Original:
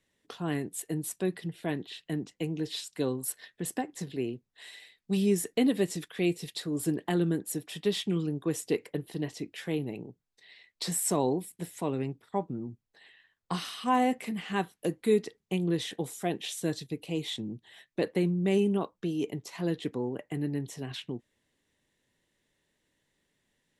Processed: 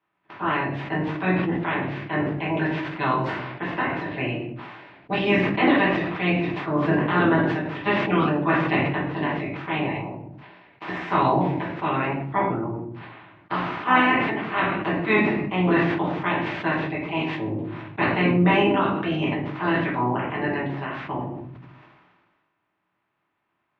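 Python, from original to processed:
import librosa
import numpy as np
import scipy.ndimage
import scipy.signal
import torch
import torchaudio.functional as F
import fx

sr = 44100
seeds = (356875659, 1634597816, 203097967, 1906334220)

y = fx.spec_clip(x, sr, under_db=28)
y = fx.cabinet(y, sr, low_hz=100.0, low_slope=12, high_hz=2400.0, hz=(150.0, 330.0, 490.0, 990.0), db=(5, 6, -6, 7))
y = fx.room_shoebox(y, sr, seeds[0], volume_m3=53.0, walls='mixed', distance_m=1.2)
y = fx.sustainer(y, sr, db_per_s=35.0)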